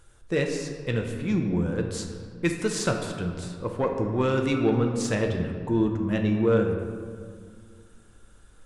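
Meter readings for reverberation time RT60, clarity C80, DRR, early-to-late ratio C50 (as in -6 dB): 2.0 s, 6.5 dB, 2.5 dB, 5.0 dB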